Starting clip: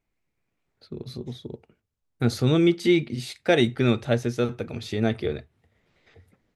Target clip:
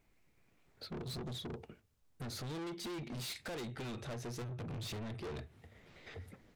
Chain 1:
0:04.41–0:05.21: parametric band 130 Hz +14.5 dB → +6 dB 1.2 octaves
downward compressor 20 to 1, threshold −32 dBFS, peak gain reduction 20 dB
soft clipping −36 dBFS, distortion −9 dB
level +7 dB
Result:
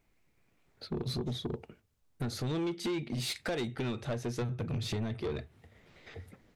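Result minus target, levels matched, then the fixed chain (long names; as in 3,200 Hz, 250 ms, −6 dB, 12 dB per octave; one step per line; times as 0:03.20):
soft clipping: distortion −6 dB
0:04.41–0:05.21: parametric band 130 Hz +14.5 dB → +6 dB 1.2 octaves
downward compressor 20 to 1, threshold −32 dBFS, peak gain reduction 20 dB
soft clipping −47.5 dBFS, distortion −3 dB
level +7 dB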